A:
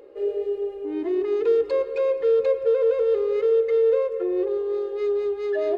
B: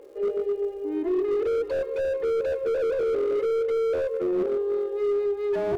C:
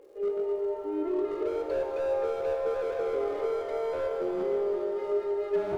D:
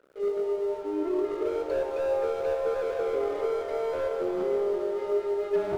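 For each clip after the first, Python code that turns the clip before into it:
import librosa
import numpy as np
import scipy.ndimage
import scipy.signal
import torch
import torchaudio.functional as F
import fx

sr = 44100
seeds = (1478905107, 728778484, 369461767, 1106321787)

y1 = fx.lowpass(x, sr, hz=2400.0, slope=6)
y1 = fx.dmg_crackle(y1, sr, seeds[0], per_s=320.0, level_db=-51.0)
y1 = fx.slew_limit(y1, sr, full_power_hz=33.0)
y2 = fx.rev_shimmer(y1, sr, seeds[1], rt60_s=3.3, semitones=7, shimmer_db=-8, drr_db=3.0)
y2 = y2 * 10.0 ** (-6.5 / 20.0)
y3 = np.sign(y2) * np.maximum(np.abs(y2) - 10.0 ** (-52.0 / 20.0), 0.0)
y3 = y3 * 10.0 ** (2.0 / 20.0)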